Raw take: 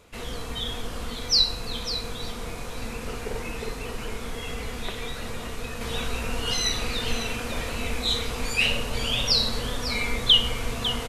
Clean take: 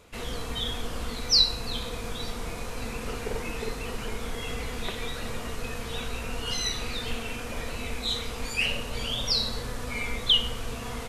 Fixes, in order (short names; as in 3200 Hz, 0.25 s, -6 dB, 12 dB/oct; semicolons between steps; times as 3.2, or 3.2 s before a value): inverse comb 0.55 s -11 dB; gain correction -4 dB, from 5.81